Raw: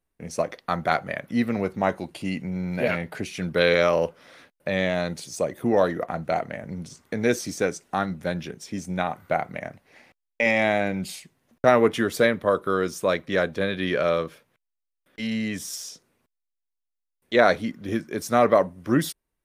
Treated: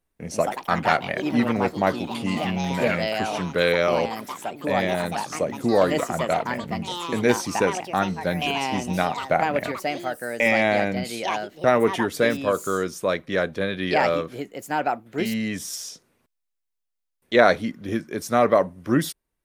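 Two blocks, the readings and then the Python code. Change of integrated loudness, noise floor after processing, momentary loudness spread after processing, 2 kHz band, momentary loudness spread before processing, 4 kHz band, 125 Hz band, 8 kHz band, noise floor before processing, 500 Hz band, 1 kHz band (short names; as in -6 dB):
+1.0 dB, -79 dBFS, 9 LU, +2.0 dB, 14 LU, +3.0 dB, +1.5 dB, +2.5 dB, -82 dBFS, +1.0 dB, +3.5 dB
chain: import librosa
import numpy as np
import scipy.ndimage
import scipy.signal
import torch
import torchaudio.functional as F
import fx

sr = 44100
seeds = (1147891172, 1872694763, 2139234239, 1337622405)

y = fx.rider(x, sr, range_db=3, speed_s=2.0)
y = fx.echo_pitch(y, sr, ms=162, semitones=4, count=3, db_per_echo=-6.0)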